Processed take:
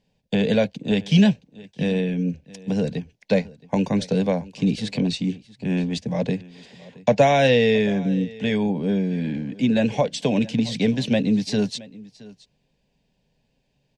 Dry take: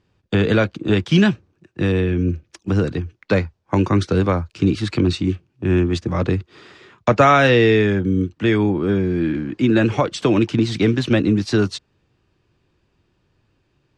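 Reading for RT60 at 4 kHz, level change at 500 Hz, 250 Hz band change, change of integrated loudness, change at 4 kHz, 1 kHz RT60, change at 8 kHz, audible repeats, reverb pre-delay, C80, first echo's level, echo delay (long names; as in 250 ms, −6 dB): no reverb audible, −3.0 dB, −2.5 dB, −3.5 dB, −1.5 dB, no reverb audible, −0.5 dB, 1, no reverb audible, no reverb audible, −21.0 dB, 671 ms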